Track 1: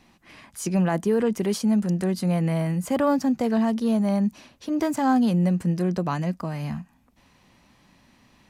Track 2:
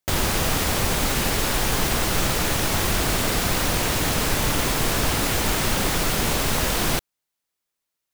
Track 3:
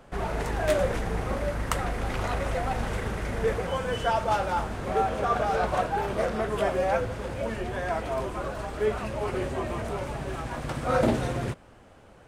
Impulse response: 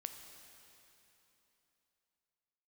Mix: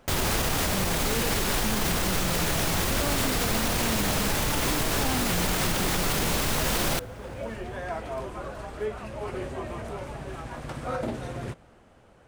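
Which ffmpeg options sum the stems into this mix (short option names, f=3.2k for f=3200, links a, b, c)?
-filter_complex "[0:a]volume=-8.5dB,asplit=2[a][b];[1:a]volume=-1dB,asplit=2[c][d];[d]volume=-20.5dB[e];[2:a]alimiter=limit=-17dB:level=0:latency=1:release=394,volume=-5dB,asplit=2[f][g];[g]volume=-13dB[h];[b]apad=whole_len=541328[i];[f][i]sidechaincompress=threshold=-40dB:ratio=8:attack=16:release=937[j];[3:a]atrim=start_sample=2205[k];[e][h]amix=inputs=2:normalize=0[l];[l][k]afir=irnorm=-1:irlink=0[m];[a][c][j][m]amix=inputs=4:normalize=0,alimiter=limit=-16dB:level=0:latency=1:release=44"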